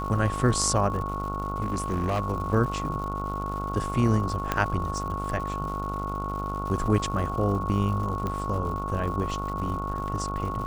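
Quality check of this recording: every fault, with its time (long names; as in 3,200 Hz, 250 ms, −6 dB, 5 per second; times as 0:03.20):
mains buzz 50 Hz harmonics 29 −33 dBFS
surface crackle 210 per second −36 dBFS
whistle 1,100 Hz −32 dBFS
0:01.63–0:02.20: clipping −22 dBFS
0:04.52: click −10 dBFS
0:08.27: click −18 dBFS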